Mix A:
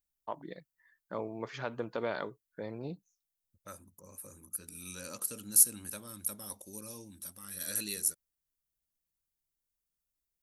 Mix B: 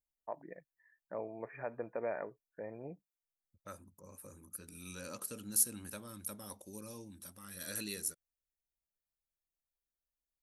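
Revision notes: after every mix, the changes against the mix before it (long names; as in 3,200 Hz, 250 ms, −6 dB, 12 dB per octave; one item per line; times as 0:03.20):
first voice: add Chebyshev low-pass with heavy ripple 2,500 Hz, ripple 9 dB
master: add high-shelf EQ 4,600 Hz −8.5 dB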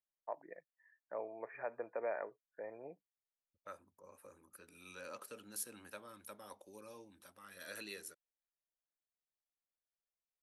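master: add three-way crossover with the lows and the highs turned down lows −16 dB, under 370 Hz, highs −14 dB, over 3,600 Hz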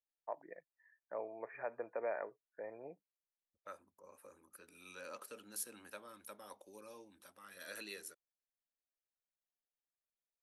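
second voice: add parametric band 110 Hz −7.5 dB 1.3 octaves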